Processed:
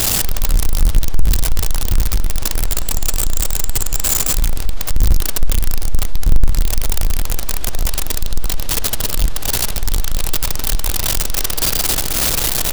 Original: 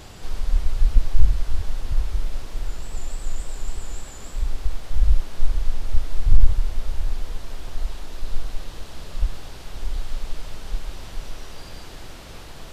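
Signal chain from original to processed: switching spikes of -11.5 dBFS; power-law curve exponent 0.5

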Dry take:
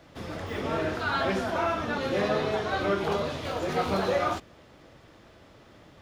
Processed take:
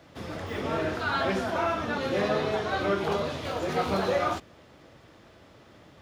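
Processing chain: HPF 51 Hz

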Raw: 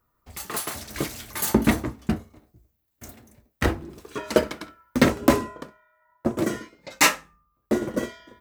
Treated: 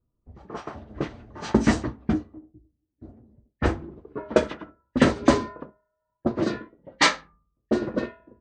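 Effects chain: nonlinear frequency compression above 1600 Hz 1.5:1; 2.13–3.06 bell 310 Hz +14.5 dB 0.29 oct; low-pass opened by the level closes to 350 Hz, open at -17 dBFS

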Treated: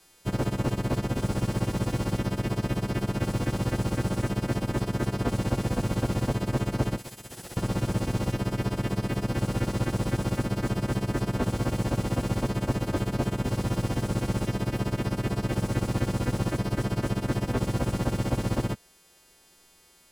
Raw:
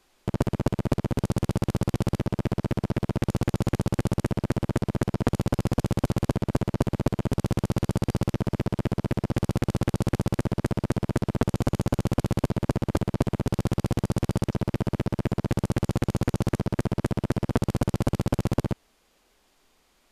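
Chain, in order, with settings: frequency quantiser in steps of 2 st; 6.98–7.57 pre-emphasis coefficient 0.9; in parallel at -10.5 dB: sample-rate reducer 1200 Hz; on the sum: slew limiter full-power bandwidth 46 Hz

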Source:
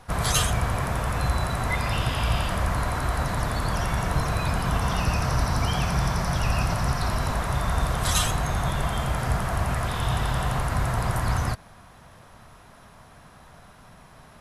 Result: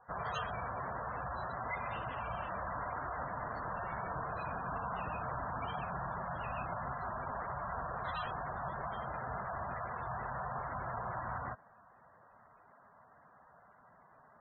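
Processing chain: LPF 1200 Hz 12 dB/oct; tilt +4.5 dB/oct; spectral gate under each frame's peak -15 dB strong; gain -6.5 dB

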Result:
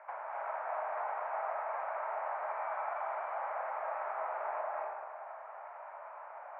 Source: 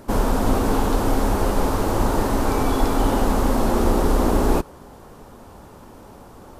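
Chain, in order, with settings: Chebyshev band-pass 620–2300 Hz, order 4; compressor 5:1, threshold -38 dBFS, peak gain reduction 13.5 dB; reverb RT60 1.7 s, pre-delay 0.194 s, DRR -3.5 dB; gain -3.5 dB

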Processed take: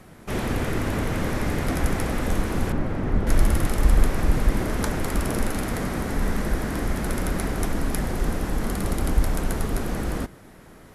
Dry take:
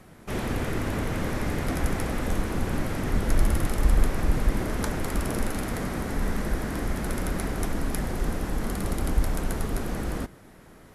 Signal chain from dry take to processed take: 2.72–3.27 LPF 1200 Hz 6 dB/oct; gain +3 dB

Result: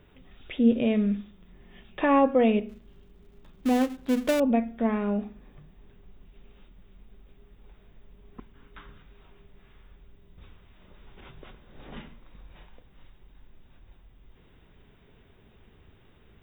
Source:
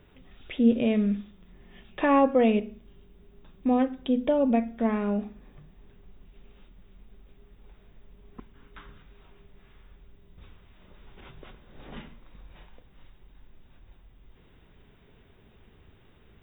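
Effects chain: 2.69–4.4 switching dead time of 0.24 ms

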